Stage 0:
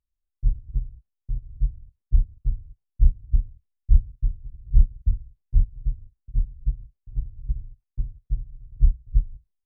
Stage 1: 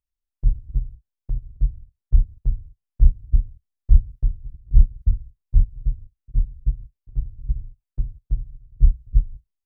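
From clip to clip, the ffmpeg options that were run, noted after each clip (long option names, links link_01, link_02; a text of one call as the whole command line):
ffmpeg -i in.wav -af "agate=range=-7dB:threshold=-37dB:ratio=16:detection=peak,volume=3dB" out.wav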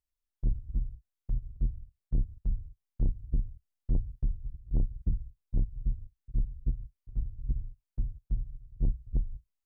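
ffmpeg -i in.wav -af "asoftclip=type=tanh:threshold=-19dB,volume=-3dB" out.wav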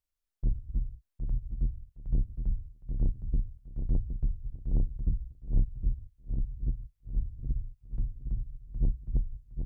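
ffmpeg -i in.wav -af "aecho=1:1:764|1528|2292:0.447|0.0983|0.0216" out.wav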